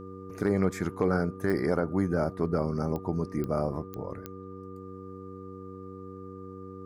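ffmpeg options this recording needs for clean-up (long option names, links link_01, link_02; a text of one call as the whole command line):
ffmpeg -i in.wav -af "adeclick=threshold=4,bandreject=frequency=94.8:width_type=h:width=4,bandreject=frequency=189.6:width_type=h:width=4,bandreject=frequency=284.4:width_type=h:width=4,bandreject=frequency=379.2:width_type=h:width=4,bandreject=frequency=474:width_type=h:width=4,bandreject=frequency=1200:width=30" out.wav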